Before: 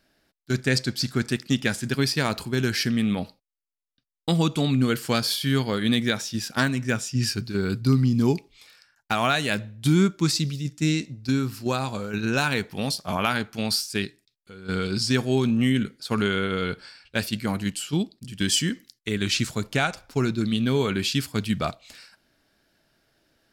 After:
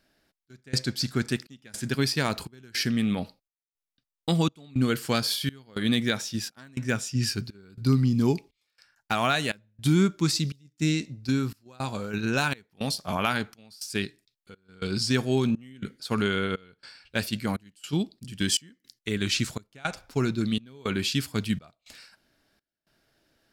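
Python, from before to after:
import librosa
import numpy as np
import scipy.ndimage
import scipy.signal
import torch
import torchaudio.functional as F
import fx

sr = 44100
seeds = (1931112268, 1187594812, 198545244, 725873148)

y = fx.step_gate(x, sr, bpm=164, pattern='xxxxx...xxx', floor_db=-24.0, edge_ms=4.5)
y = F.gain(torch.from_numpy(y), -2.0).numpy()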